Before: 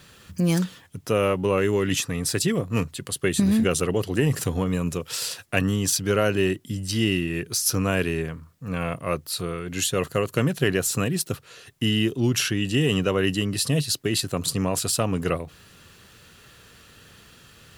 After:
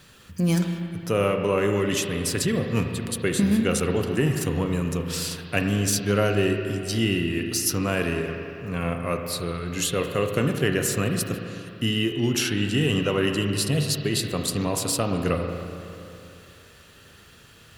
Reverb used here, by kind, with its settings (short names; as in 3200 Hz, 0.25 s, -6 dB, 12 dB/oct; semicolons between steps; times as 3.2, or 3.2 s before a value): spring tank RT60 2.8 s, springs 35/39 ms, chirp 35 ms, DRR 4 dB; gain -1.5 dB